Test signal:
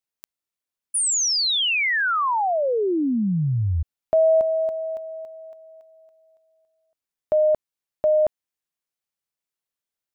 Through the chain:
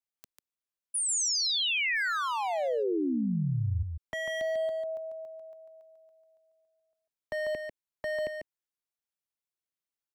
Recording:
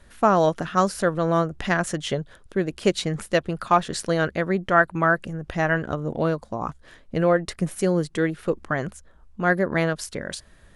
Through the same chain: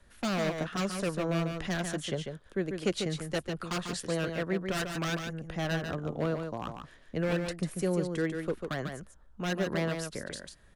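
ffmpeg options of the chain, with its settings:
ffmpeg -i in.wav -filter_complex "[0:a]acrossover=split=260|390|2300[link_01][link_02][link_03][link_04];[link_03]aeval=exprs='0.0841*(abs(mod(val(0)/0.0841+3,4)-2)-1)':channel_layout=same[link_05];[link_01][link_02][link_05][link_04]amix=inputs=4:normalize=0,aecho=1:1:145:0.501,volume=-8dB" out.wav

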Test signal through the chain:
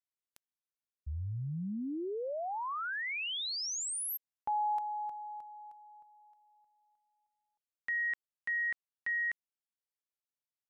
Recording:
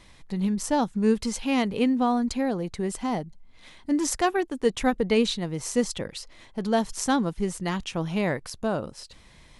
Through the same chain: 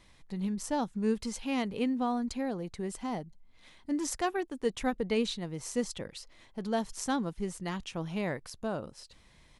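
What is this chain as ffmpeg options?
ffmpeg -i in.wav -af "aresample=32000,aresample=44100,volume=-7.5dB" out.wav

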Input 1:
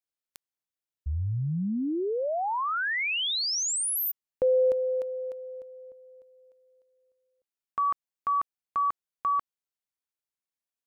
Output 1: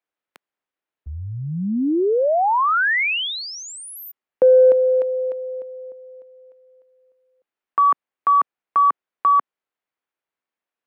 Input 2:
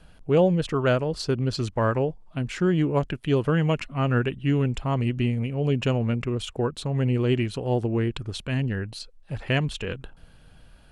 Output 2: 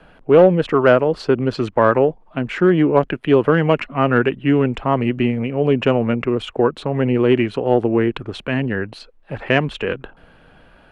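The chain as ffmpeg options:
ffmpeg -i in.wav -filter_complex "[0:a]volume=13.5dB,asoftclip=hard,volume=-13.5dB,acrossover=split=220 2800:gain=0.224 1 0.112[link_01][link_02][link_03];[link_01][link_02][link_03]amix=inputs=3:normalize=0,acontrast=85,volume=4dB" out.wav

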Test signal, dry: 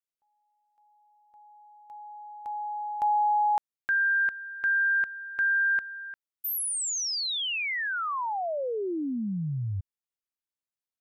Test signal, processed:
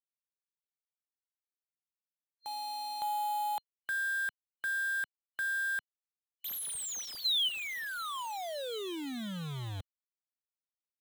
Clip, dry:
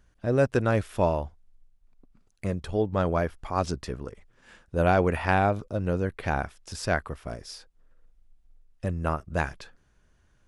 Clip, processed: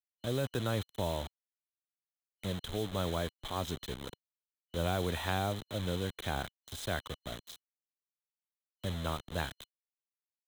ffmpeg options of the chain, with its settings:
ffmpeg -i in.wav -filter_complex "[0:a]acrusher=bits=5:mix=0:aa=0.000001,superequalizer=13b=3.16:14b=0.501,acrossover=split=150|3000[link_01][link_02][link_03];[link_02]acompressor=threshold=-24dB:ratio=6:attack=4.2:release=42:knee=2.83:detection=peak[link_04];[link_01][link_04][link_03]amix=inputs=3:normalize=0,volume=-7.5dB" out.wav

